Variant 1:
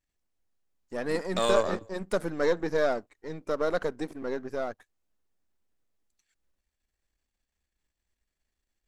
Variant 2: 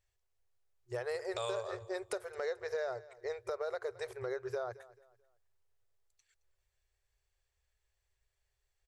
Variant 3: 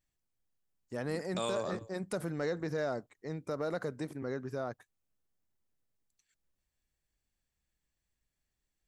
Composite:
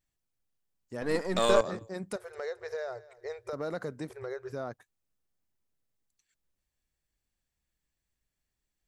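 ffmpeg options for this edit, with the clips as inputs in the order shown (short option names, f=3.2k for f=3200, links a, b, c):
-filter_complex "[1:a]asplit=2[a][b];[2:a]asplit=4[c][d][e][f];[c]atrim=end=1.022[g];[0:a]atrim=start=1.018:end=1.612[h];[d]atrim=start=1.608:end=2.162[i];[a]atrim=start=2.158:end=3.532[j];[e]atrim=start=3.528:end=4.102[k];[b]atrim=start=4.098:end=4.522[l];[f]atrim=start=4.518[m];[g][h]acrossfade=d=0.004:c1=hsin:c2=hsin[n];[n][i]acrossfade=d=0.004:c1=hsin:c2=hsin[o];[o][j]acrossfade=d=0.004:c1=hsin:c2=hsin[p];[p][k]acrossfade=d=0.004:c1=hsin:c2=hsin[q];[q][l]acrossfade=d=0.004:c1=hsin:c2=hsin[r];[r][m]acrossfade=d=0.004:c1=hsin:c2=hsin"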